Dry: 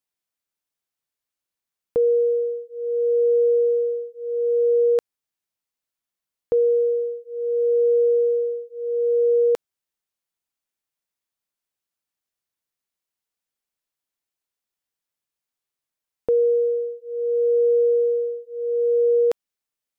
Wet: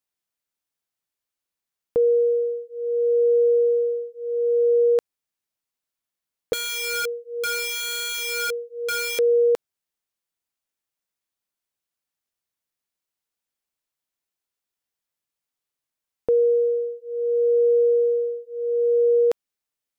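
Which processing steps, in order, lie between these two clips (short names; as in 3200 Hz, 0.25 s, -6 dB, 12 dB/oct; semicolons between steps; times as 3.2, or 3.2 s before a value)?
6.53–9.19 wrapped overs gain 22 dB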